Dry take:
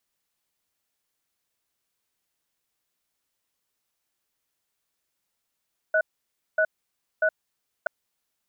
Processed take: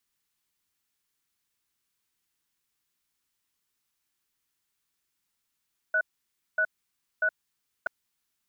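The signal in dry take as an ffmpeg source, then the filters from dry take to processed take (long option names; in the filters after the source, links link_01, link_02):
-f lavfi -i "aevalsrc='0.0891*(sin(2*PI*632*t)+sin(2*PI*1480*t))*clip(min(mod(t,0.64),0.07-mod(t,0.64))/0.005,0,1)':duration=1.93:sample_rate=44100"
-af "equalizer=frequency=600:width=1.9:gain=-11"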